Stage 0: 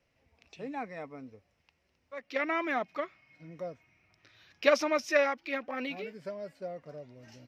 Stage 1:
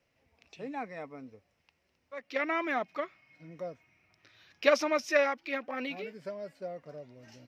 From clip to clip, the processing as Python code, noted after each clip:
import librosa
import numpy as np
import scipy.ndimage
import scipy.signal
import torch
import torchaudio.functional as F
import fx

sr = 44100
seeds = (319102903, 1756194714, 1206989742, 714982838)

y = fx.low_shelf(x, sr, hz=72.0, db=-7.5)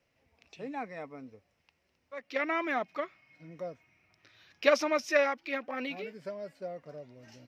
y = x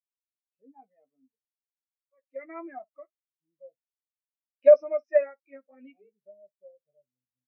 y = fx.room_early_taps(x, sr, ms=(15, 60), db=(-7.0, -16.5))
y = fx.spectral_expand(y, sr, expansion=2.5)
y = y * 10.0 ** (3.0 / 20.0)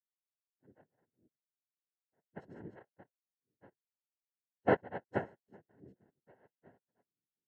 y = fx.noise_vocoder(x, sr, seeds[0], bands=3)
y = np.convolve(y, np.full(37, 1.0 / 37))[:len(y)]
y = y * 10.0 ** (-6.0 / 20.0)